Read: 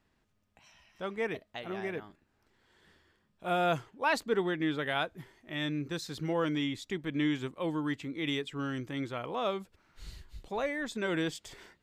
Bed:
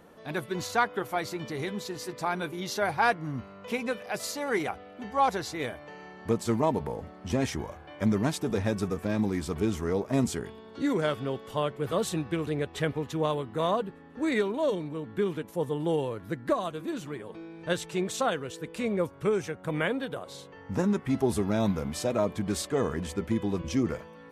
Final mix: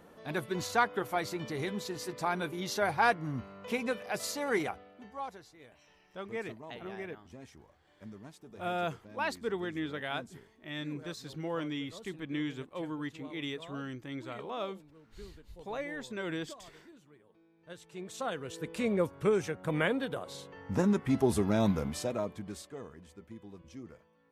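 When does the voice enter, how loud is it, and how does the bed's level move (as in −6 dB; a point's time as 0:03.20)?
5.15 s, −5.0 dB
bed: 0:04.60 −2 dB
0:05.54 −22.5 dB
0:17.57 −22.5 dB
0:18.62 −1 dB
0:21.81 −1 dB
0:22.96 −20 dB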